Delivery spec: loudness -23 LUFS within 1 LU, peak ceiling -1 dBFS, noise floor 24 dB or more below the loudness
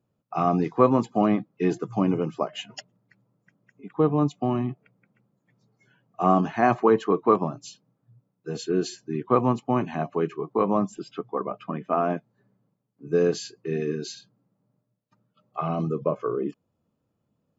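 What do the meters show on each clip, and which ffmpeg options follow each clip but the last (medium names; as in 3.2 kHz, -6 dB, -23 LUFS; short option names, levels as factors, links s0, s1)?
loudness -25.5 LUFS; peak level -4.5 dBFS; loudness target -23.0 LUFS
-> -af "volume=1.33"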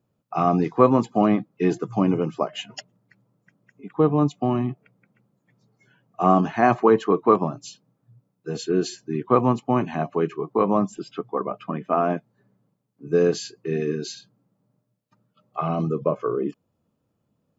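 loudness -23.0 LUFS; peak level -2.0 dBFS; noise floor -74 dBFS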